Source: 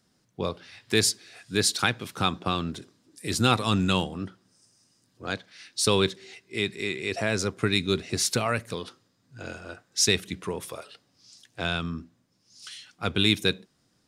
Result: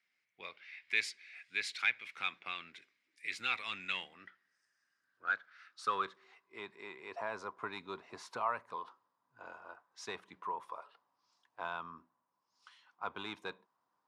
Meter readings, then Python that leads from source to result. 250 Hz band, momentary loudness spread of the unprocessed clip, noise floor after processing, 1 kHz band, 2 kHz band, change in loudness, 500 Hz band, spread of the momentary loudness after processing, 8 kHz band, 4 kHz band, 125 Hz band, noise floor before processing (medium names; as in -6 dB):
-26.0 dB, 18 LU, -83 dBFS, -7.5 dB, -7.0 dB, -13.0 dB, -18.0 dB, 19 LU, -25.0 dB, -17.5 dB, -32.0 dB, -69 dBFS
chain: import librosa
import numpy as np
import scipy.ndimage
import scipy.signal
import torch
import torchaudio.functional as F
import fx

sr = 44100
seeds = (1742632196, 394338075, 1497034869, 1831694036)

y = 10.0 ** (-11.0 / 20.0) * np.tanh(x / 10.0 ** (-11.0 / 20.0))
y = fx.filter_sweep_bandpass(y, sr, from_hz=2200.0, to_hz=990.0, start_s=3.87, end_s=6.65, q=7.2)
y = F.gain(torch.from_numpy(y), 5.5).numpy()